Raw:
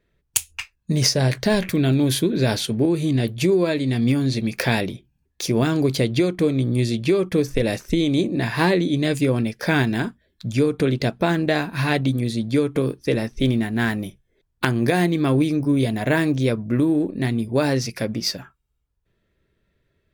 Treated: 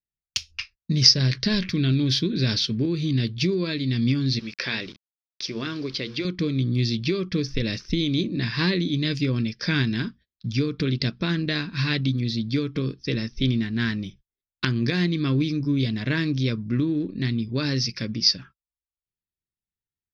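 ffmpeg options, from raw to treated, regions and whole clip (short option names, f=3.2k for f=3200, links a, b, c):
-filter_complex "[0:a]asettb=1/sr,asplit=3[a][b][c];[a]atrim=end=4.394[d];[b]atrim=start=4.39:end=6.25,asetpts=PTS-STARTPTS,afade=t=in:d=0.004:c=qsin,afade=t=out:st=1.856:d=0.004:c=qsin,bass=f=250:g=-14,treble=f=4k:g=-8,bandreject=f=119.3:t=h:w=4,bandreject=f=238.6:t=h:w=4,bandreject=f=357.9:t=h:w=4,bandreject=f=477.2:t=h:w=4,aeval=exprs='val(0)*gte(abs(val(0)),0.0112)':c=same[e];[c]atrim=start=6.246[f];[d][e]acrossfade=d=0.004:c1=hsin:c2=qsin[g];[g][f]acrossfade=d=0.004:c1=qsin:c2=hsin,agate=range=-28dB:threshold=-44dB:ratio=16:detection=peak,firequalizer=gain_entry='entry(190,0);entry(760,-19);entry(1100,-5);entry(5300,9);entry(7600,-24);entry(11000,-29)':delay=0.05:min_phase=1,volume=-1.5dB"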